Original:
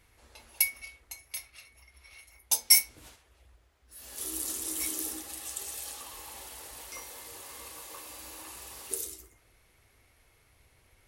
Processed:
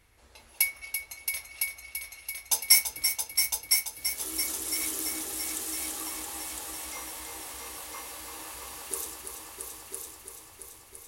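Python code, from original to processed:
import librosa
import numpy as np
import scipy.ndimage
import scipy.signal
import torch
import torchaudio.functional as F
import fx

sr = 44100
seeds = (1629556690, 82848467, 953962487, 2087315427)

y = fx.dynamic_eq(x, sr, hz=1300.0, q=0.73, threshold_db=-52.0, ratio=4.0, max_db=4)
y = fx.echo_heads(y, sr, ms=336, heads='all three', feedback_pct=56, wet_db=-8.0)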